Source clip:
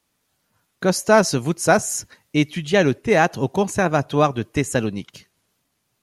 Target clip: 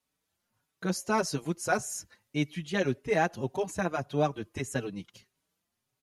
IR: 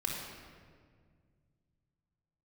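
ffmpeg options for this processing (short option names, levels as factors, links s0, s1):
-filter_complex "[0:a]asplit=2[s0][s1];[s1]adelay=5,afreqshift=1.7[s2];[s0][s2]amix=inputs=2:normalize=1,volume=0.376"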